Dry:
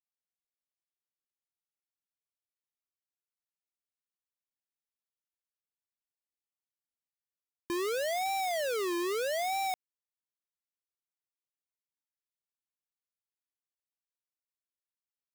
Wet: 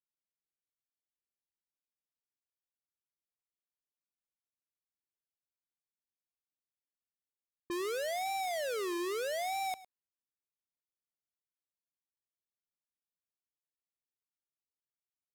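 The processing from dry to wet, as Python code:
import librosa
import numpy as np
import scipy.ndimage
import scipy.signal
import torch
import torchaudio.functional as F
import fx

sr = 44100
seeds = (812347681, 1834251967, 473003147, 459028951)

y = fx.env_lowpass(x, sr, base_hz=450.0, full_db=-33.0)
y = y + 10.0 ** (-18.0 / 20.0) * np.pad(y, (int(107 * sr / 1000.0), 0))[:len(y)]
y = F.gain(torch.from_numpy(y), -3.5).numpy()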